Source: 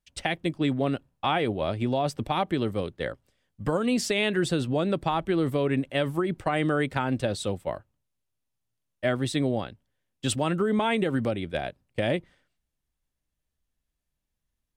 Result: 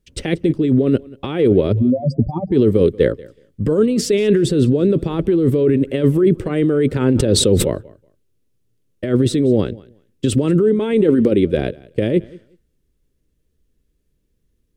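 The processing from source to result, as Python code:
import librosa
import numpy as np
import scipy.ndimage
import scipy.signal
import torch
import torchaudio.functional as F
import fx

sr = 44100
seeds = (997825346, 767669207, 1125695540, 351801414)

y = fx.spec_expand(x, sr, power=3.8, at=(1.72, 2.52))
y = fx.peak_eq(y, sr, hz=120.0, db=-12.0, octaves=0.51, at=(10.93, 11.49))
y = fx.over_compress(y, sr, threshold_db=-29.0, ratio=-1.0)
y = fx.low_shelf_res(y, sr, hz=570.0, db=9.0, q=3.0)
y = fx.echo_feedback(y, sr, ms=185, feedback_pct=17, wet_db=-22.5)
y = fx.sustainer(y, sr, db_per_s=40.0, at=(7.0, 7.7))
y = y * 10.0 ** (4.0 / 20.0)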